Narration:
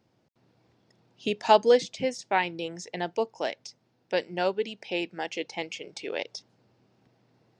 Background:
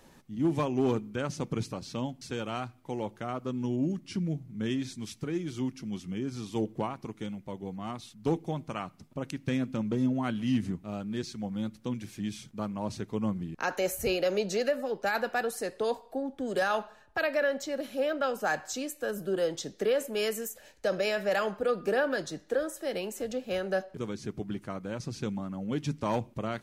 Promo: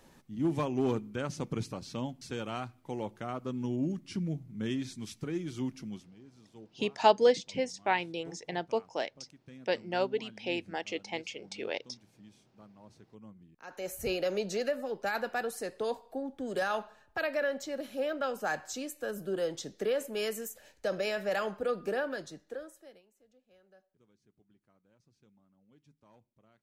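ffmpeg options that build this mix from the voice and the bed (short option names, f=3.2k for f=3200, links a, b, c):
-filter_complex "[0:a]adelay=5550,volume=-3.5dB[a];[1:a]volume=15dB,afade=t=out:st=5.83:d=0.28:silence=0.11885,afade=t=in:st=13.62:d=0.49:silence=0.133352,afade=t=out:st=21.72:d=1.31:silence=0.0354813[b];[a][b]amix=inputs=2:normalize=0"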